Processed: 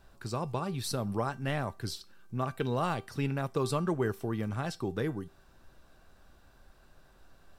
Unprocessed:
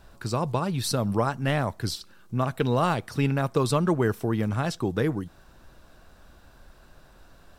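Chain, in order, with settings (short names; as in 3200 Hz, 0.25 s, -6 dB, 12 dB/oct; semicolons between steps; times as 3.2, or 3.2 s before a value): resonator 390 Hz, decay 0.28 s, harmonics all, mix 60%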